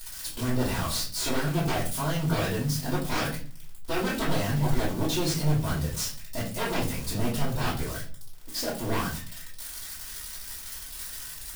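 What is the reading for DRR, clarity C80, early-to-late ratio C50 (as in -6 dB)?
-8.0 dB, 12.5 dB, 6.5 dB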